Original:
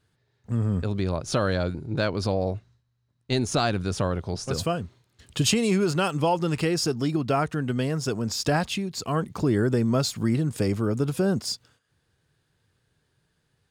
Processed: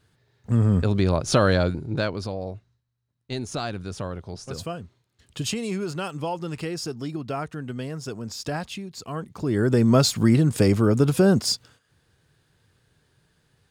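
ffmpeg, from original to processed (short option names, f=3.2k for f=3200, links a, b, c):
-af "volume=17.5dB,afade=t=out:st=1.52:d=0.78:silence=0.266073,afade=t=in:st=9.39:d=0.53:silence=0.251189"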